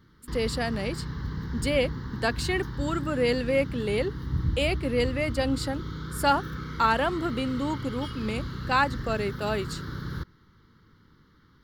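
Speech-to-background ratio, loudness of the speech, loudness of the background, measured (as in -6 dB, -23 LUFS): 6.5 dB, -28.5 LUFS, -35.0 LUFS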